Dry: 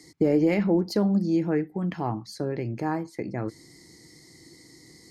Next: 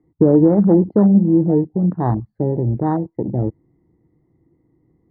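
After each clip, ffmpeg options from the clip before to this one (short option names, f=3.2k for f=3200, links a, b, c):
-af "lowpass=f=1.2k:w=0.5412,lowpass=f=1.2k:w=1.3066,afwtdn=0.0316,lowshelf=f=130:g=11.5,volume=7.5dB"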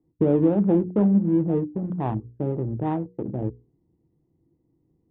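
-af "adynamicsmooth=sensitivity=1.5:basefreq=1.2k,aresample=8000,aresample=44100,bandreject=f=60:t=h:w=6,bandreject=f=120:t=h:w=6,bandreject=f=180:t=h:w=6,bandreject=f=240:t=h:w=6,bandreject=f=300:t=h:w=6,bandreject=f=360:t=h:w=6,bandreject=f=420:t=h:w=6,bandreject=f=480:t=h:w=6,volume=-6.5dB"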